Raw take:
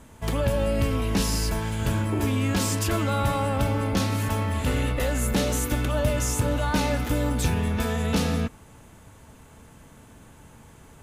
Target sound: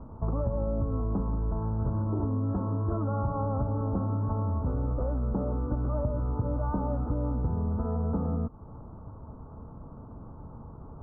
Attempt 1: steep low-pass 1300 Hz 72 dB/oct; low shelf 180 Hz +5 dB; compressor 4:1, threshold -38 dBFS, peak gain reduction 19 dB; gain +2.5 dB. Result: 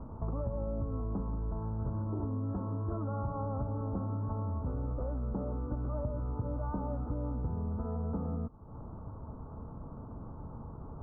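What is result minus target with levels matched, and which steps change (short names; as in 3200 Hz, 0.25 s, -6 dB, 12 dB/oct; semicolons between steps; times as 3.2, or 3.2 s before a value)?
compressor: peak gain reduction +6 dB
change: compressor 4:1, threshold -30 dBFS, peak gain reduction 13 dB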